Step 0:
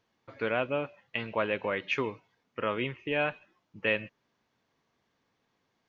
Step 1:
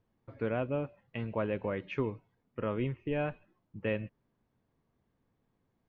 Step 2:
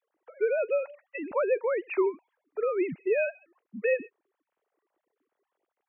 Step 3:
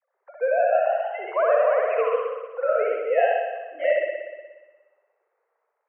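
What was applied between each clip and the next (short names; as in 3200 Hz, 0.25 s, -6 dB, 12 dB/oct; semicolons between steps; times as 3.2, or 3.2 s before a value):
tilt -4 dB/oct; gain -6.5 dB
sine-wave speech; gain +6 dB
spring tank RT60 1.3 s, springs 59 ms, chirp 70 ms, DRR -1.5 dB; mistuned SSB +74 Hz 400–2100 Hz; echoes that change speed 0.186 s, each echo +1 st, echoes 3, each echo -6 dB; gain +3.5 dB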